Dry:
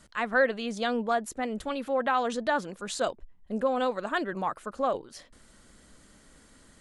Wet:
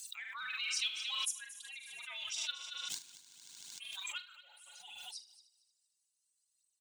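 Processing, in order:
spectral dynamics exaggerated over time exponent 2
inverse Chebyshev high-pass filter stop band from 720 Hz, stop band 70 dB
0:02.59–0:03.93: power curve on the samples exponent 2
phase shifter 0.6 Hz, delay 3.3 ms, feedback 59%
frequency shifter −360 Hz
double-tracking delay 43 ms −11.5 dB
on a send: echo machine with several playback heads 76 ms, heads first and third, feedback 44%, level −16 dB
on the sum: background raised ahead of every attack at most 24 dB per second
level +4.5 dB

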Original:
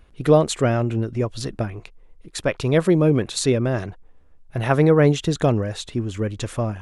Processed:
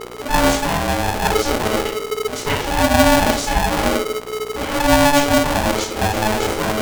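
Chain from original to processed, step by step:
reversed playback
downward compressor 6 to 1, threshold −26 dBFS, peak gain reduction 16 dB
reversed playback
EQ curve with evenly spaced ripples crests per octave 0.78, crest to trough 9 dB
rectangular room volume 59 cubic metres, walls mixed, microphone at 3.1 metres
hum with harmonics 60 Hz, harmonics 14, −34 dBFS 0 dB per octave
ring modulator with a square carrier 430 Hz
level −3.5 dB

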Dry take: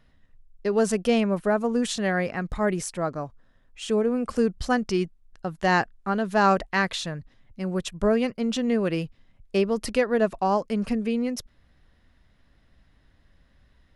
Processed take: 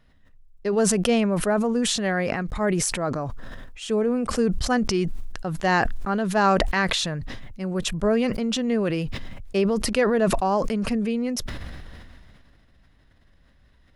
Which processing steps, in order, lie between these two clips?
level that may fall only so fast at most 23 dB per second

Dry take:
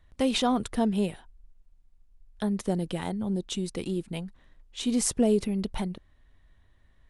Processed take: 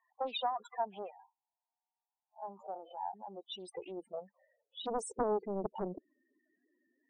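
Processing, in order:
0:01.11–0:03.14: spectrum smeared in time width 82 ms
high-pass filter sweep 840 Hz → 310 Hz, 0:03.28–0:06.09
downward compressor 8 to 1, threshold −26 dBFS, peak gain reduction 11.5 dB
spectral peaks only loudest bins 8
dynamic equaliser 170 Hz, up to +4 dB, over −54 dBFS, Q 2.7
highs frequency-modulated by the lows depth 0.8 ms
level −3 dB

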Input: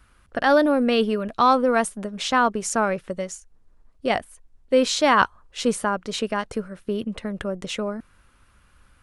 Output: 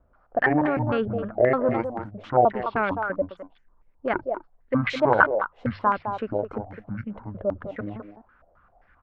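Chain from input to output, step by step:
pitch shifter gated in a rhythm −12 semitones, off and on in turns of 153 ms
mains-hum notches 50/100/150 Hz
far-end echo of a speakerphone 210 ms, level −7 dB
low-pass on a step sequencer 7.6 Hz 620–2,200 Hz
level −5 dB

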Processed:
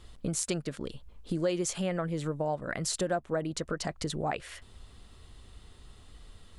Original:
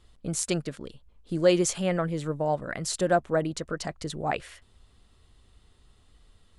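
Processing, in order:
downward compressor 3 to 1, threshold −39 dBFS, peak gain reduction 17.5 dB
level +7 dB

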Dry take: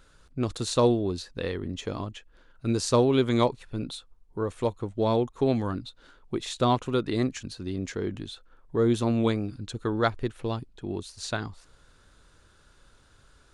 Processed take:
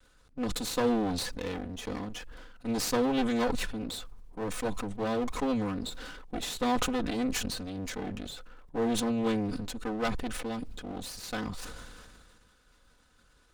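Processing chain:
lower of the sound and its delayed copy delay 4 ms
level that may fall only so fast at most 27 dB per second
level −5 dB

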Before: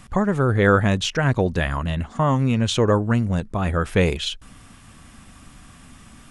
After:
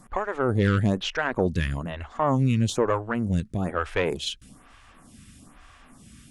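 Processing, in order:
tube saturation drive 9 dB, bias 0.35
phaser with staggered stages 1.1 Hz

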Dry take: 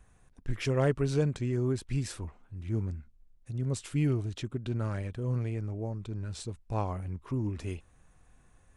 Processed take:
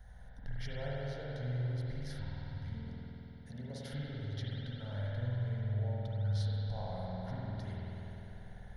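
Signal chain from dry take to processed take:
0:02.79–0:03.93: high-pass filter 190 Hz 24 dB per octave
downward compressor 6 to 1, threshold −44 dBFS, peak gain reduction 20.5 dB
phaser with its sweep stopped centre 1,700 Hz, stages 8
spring reverb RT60 4 s, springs 49 ms, chirp 50 ms, DRR −6.5 dB
level +4 dB

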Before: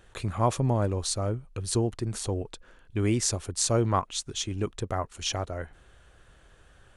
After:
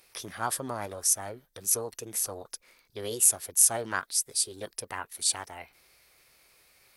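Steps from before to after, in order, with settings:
formants moved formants +6 semitones
RIAA equalisation recording
level −5.5 dB

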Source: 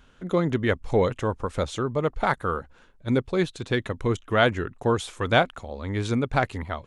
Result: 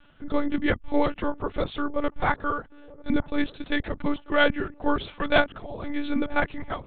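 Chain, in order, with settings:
on a send: delay with a low-pass on its return 941 ms, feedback 52%, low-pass 860 Hz, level −22 dB
on the sum: one-pitch LPC vocoder at 8 kHz 290 Hz

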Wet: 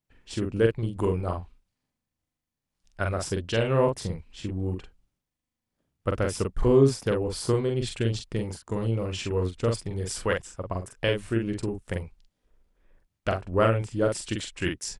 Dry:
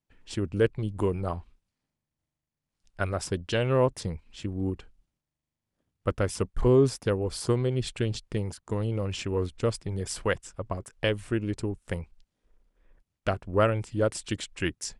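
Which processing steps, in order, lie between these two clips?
double-tracking delay 44 ms −4 dB

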